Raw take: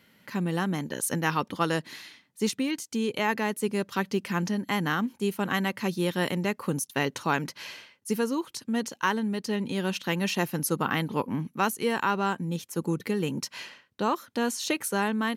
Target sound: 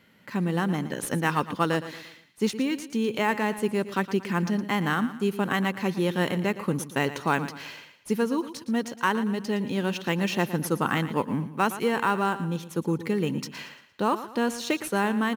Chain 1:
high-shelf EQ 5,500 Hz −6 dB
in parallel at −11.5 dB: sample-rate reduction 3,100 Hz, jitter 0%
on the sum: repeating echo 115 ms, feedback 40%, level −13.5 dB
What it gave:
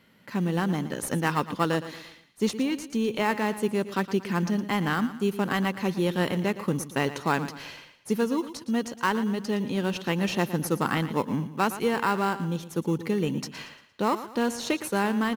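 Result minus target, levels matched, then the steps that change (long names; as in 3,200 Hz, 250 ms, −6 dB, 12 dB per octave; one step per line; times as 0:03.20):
sample-rate reduction: distortion +7 dB
change: sample-rate reduction 9,600 Hz, jitter 0%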